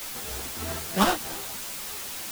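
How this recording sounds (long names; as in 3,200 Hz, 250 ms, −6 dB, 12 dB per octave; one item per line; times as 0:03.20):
aliases and images of a low sample rate 2,300 Hz, jitter 20%
tremolo triangle 3.2 Hz, depth 70%
a quantiser's noise floor 6 bits, dither triangular
a shimmering, thickened sound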